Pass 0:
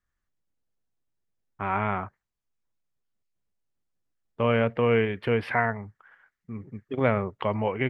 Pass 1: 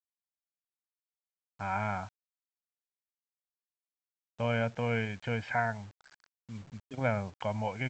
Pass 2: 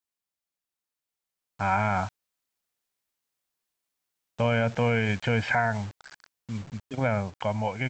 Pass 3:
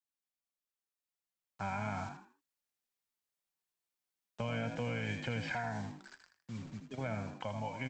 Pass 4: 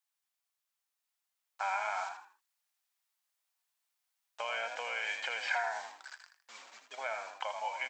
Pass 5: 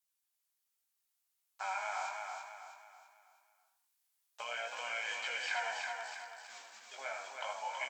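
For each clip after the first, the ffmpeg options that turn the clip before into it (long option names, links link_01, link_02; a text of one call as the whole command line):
ffmpeg -i in.wav -af "aecho=1:1:1.3:0.68,aresample=16000,acrusher=bits=7:mix=0:aa=0.000001,aresample=44100,volume=-8dB" out.wav
ffmpeg -i in.wav -af "dynaudnorm=framelen=250:gausssize=13:maxgain=7dB,alimiter=limit=-19dB:level=0:latency=1:release=57,volume=5dB" out.wav
ffmpeg -i in.wav -filter_complex "[0:a]flanger=delay=3.4:depth=2.5:regen=62:speed=0.39:shape=triangular,asplit=5[link_01][link_02][link_03][link_04][link_05];[link_02]adelay=80,afreqshift=47,volume=-8dB[link_06];[link_03]adelay=160,afreqshift=94,volume=-18.2dB[link_07];[link_04]adelay=240,afreqshift=141,volume=-28.3dB[link_08];[link_05]adelay=320,afreqshift=188,volume=-38.5dB[link_09];[link_01][link_06][link_07][link_08][link_09]amix=inputs=5:normalize=0,acrossover=split=130|3000[link_10][link_11][link_12];[link_11]acompressor=threshold=-34dB:ratio=3[link_13];[link_10][link_13][link_12]amix=inputs=3:normalize=0,volume=-4dB" out.wav
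ffmpeg -i in.wav -af "highpass=frequency=690:width=0.5412,highpass=frequency=690:width=1.3066,volume=6.5dB" out.wav
ffmpeg -i in.wav -filter_complex "[0:a]aemphasis=mode=production:type=cd,flanger=delay=15.5:depth=6.8:speed=0.63,asplit=2[link_01][link_02];[link_02]aecho=0:1:325|650|975|1300|1625:0.596|0.244|0.1|0.0411|0.0168[link_03];[link_01][link_03]amix=inputs=2:normalize=0,volume=-1.5dB" out.wav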